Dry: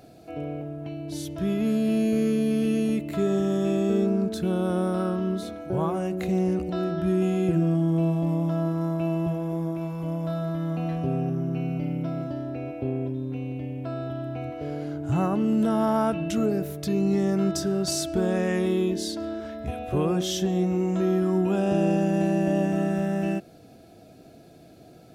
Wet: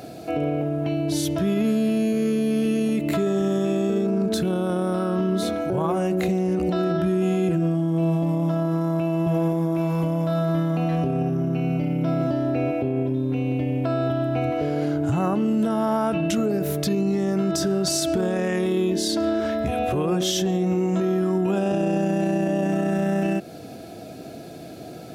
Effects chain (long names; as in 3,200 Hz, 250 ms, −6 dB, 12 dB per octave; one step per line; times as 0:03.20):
in parallel at +1 dB: downward compressor, threshold −32 dBFS, peak gain reduction 13 dB
on the sum: brickwall limiter −20 dBFS, peak gain reduction 10.5 dB
high-pass filter 120 Hz 6 dB per octave
level +6 dB